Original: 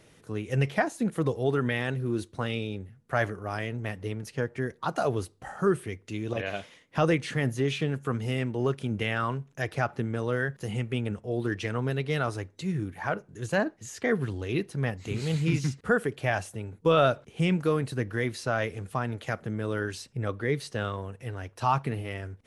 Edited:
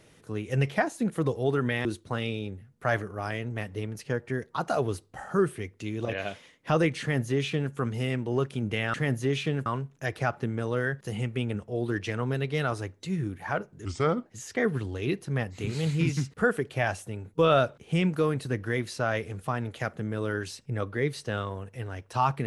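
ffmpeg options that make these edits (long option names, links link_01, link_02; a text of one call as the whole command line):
ffmpeg -i in.wav -filter_complex "[0:a]asplit=6[link_01][link_02][link_03][link_04][link_05][link_06];[link_01]atrim=end=1.852[link_07];[link_02]atrim=start=2.128:end=9.222[link_08];[link_03]atrim=start=7.288:end=8.012[link_09];[link_04]atrim=start=9.218:end=13.414[link_10];[link_05]atrim=start=13.41:end=13.73,asetpts=PTS-STARTPTS,asetrate=34398,aresample=44100,atrim=end_sample=18092,asetpts=PTS-STARTPTS[link_11];[link_06]atrim=start=13.726[link_12];[link_07][link_08]acrossfade=duration=0.004:curve1=hsin:curve2=hsin[link_13];[link_13][link_09]acrossfade=duration=0.004:curve1=hsin:curve2=hsin[link_14];[link_14][link_10]acrossfade=duration=0.004:curve1=hsin:curve2=hsin[link_15];[link_15][link_11]acrossfade=duration=0.004:curve1=hsin:curve2=hsin[link_16];[link_16][link_12]acrossfade=duration=0.004:curve1=hsin:curve2=hsin" out.wav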